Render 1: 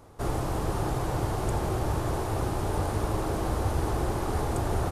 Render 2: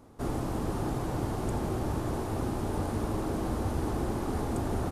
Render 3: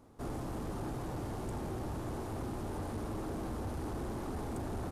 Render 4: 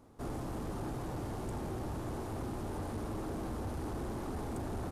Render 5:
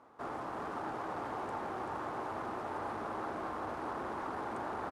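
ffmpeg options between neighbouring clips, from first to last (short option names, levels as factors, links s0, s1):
-af "equalizer=f=240:t=o:w=0.82:g=10,volume=0.562"
-af "asoftclip=type=tanh:threshold=0.0422,volume=0.562"
-af anull
-af "bandpass=f=1200:t=q:w=1.2:csg=0,aecho=1:1:385:0.501,volume=2.66"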